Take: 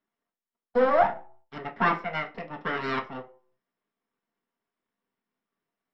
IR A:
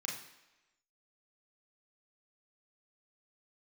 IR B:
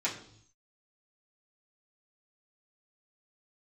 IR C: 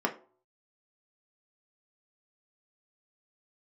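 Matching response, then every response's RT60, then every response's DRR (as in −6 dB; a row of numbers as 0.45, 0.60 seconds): C; 1.0, 0.65, 0.45 seconds; −2.0, −8.5, 1.0 decibels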